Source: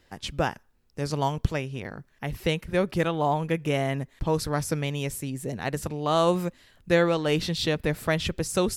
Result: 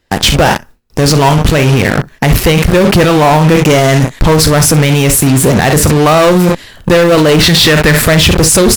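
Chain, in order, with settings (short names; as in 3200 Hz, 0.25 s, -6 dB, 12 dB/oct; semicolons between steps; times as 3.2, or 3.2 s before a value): 7.39–8.02 bell 1700 Hz +8.5 dB 1.2 oct; soft clip -19.5 dBFS, distortion -12 dB; early reflections 39 ms -12 dB, 64 ms -15 dB; gate with hold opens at -48 dBFS; in parallel at -11.5 dB: fuzz box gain 43 dB, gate -41 dBFS; 3.57–4.16 on the sum: bell 6500 Hz +6 dB 0.65 oct; maximiser +24 dB; gain -1 dB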